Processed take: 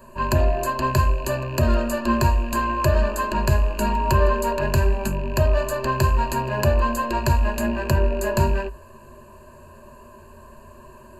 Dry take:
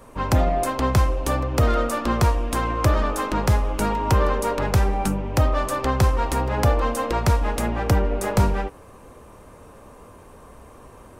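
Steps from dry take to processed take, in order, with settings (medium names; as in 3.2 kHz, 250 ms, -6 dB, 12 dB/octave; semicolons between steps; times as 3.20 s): rattle on loud lows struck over -28 dBFS, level -29 dBFS; rippled EQ curve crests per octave 1.4, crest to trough 18 dB; trim -4 dB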